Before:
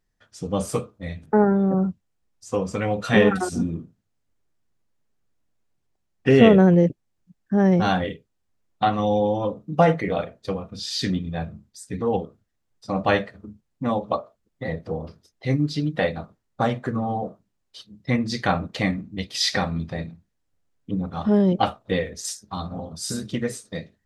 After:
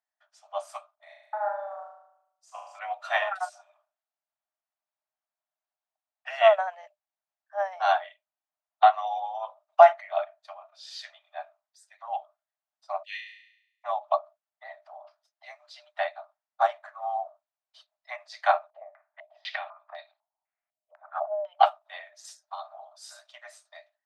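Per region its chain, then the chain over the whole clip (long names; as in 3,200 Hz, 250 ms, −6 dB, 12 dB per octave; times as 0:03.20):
0:00.95–0:02.79: high-shelf EQ 8,700 Hz +6.5 dB + output level in coarse steps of 11 dB + flutter between parallel walls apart 6.4 metres, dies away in 0.8 s
0:13.03–0:13.84: Butterworth high-pass 1,900 Hz 96 dB per octave + flutter between parallel walls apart 5.9 metres, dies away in 0.82 s
0:18.70–0:21.57: low shelf with overshoot 120 Hz −13.5 dB, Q 3 + downward compressor 5 to 1, threshold −22 dBFS + low-pass on a step sequencer 4 Hz 480–4,000 Hz
whole clip: Chebyshev high-pass filter 600 Hz, order 10; spectral tilt −3.5 dB per octave; expander for the loud parts 1.5 to 1, over −36 dBFS; level +5 dB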